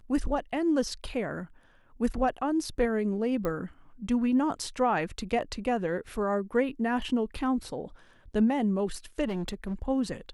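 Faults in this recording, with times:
3.45 s: pop -19 dBFS
9.25–9.74 s: clipped -28 dBFS

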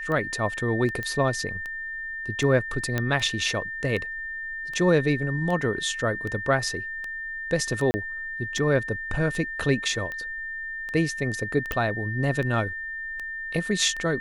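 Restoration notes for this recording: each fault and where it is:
tick 78 rpm -21 dBFS
whine 1.8 kHz -31 dBFS
1.03 s: pop -18 dBFS
2.98 s: pop -11 dBFS
7.91–7.94 s: dropout 30 ms
11.72 s: pop -13 dBFS

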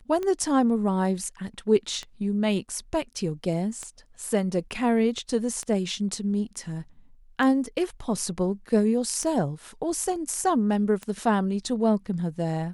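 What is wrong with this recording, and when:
tick 33 1/3 rpm -19 dBFS

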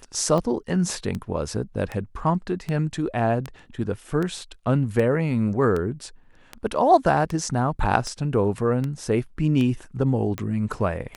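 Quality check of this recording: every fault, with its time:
tick 78 rpm -16 dBFS

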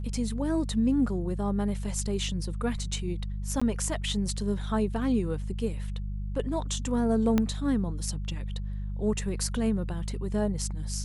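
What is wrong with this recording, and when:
hum 50 Hz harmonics 4 -33 dBFS
3.60–3.62 s: dropout 15 ms
7.38 s: pop -12 dBFS

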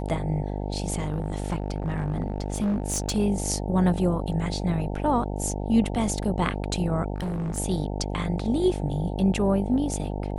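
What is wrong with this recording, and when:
buzz 50 Hz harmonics 18 -30 dBFS
0.98–3.17 s: clipped -21.5 dBFS
7.14–7.58 s: clipped -26 dBFS

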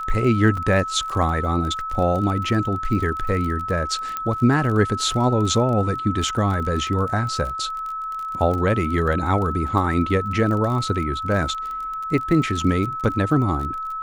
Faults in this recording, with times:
crackle 32 per s -28 dBFS
whine 1.3 kHz -26 dBFS
0.57 s: dropout 4.2 ms
4.17 s: pop -12 dBFS

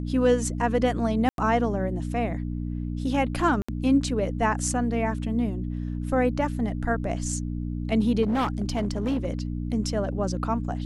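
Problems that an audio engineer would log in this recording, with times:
hum 60 Hz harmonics 5 -30 dBFS
1.29–1.38 s: dropout 92 ms
3.62–3.69 s: dropout 65 ms
8.22–9.26 s: clipped -21 dBFS

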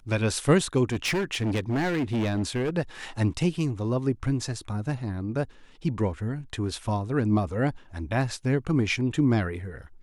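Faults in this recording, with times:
0.89–2.70 s: clipped -23 dBFS

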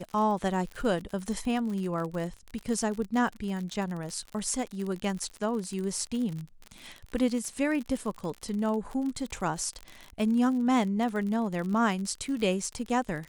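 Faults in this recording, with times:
crackle 53 per s -33 dBFS

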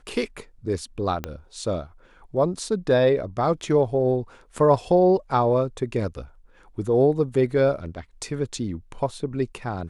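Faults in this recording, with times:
1.24 s: pop -14 dBFS

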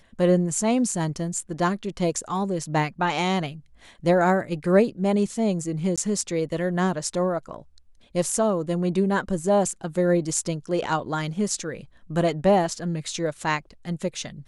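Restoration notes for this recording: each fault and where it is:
5.96–5.98 s: dropout 16 ms

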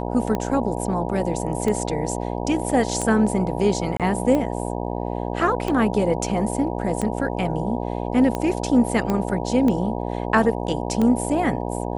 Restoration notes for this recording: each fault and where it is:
buzz 60 Hz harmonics 16 -27 dBFS
tick 45 rpm -12 dBFS
3.97–4.00 s: dropout 27 ms
9.10 s: pop -11 dBFS

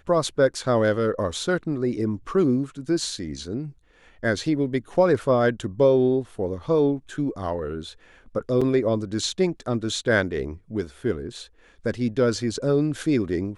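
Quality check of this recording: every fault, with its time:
8.61 s: dropout 4.9 ms

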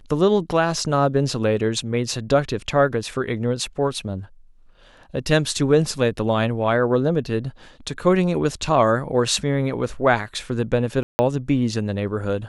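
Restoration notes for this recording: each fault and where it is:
11.03–11.19 s: dropout 160 ms

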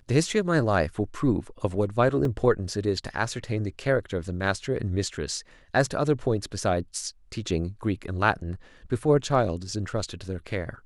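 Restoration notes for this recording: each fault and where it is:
2.25 s: dropout 2.2 ms

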